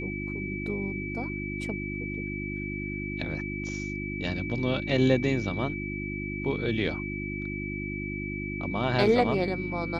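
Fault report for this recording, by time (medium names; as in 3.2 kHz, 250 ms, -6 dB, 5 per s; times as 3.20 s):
hum 50 Hz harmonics 7 -35 dBFS
whine 2.3 kHz -36 dBFS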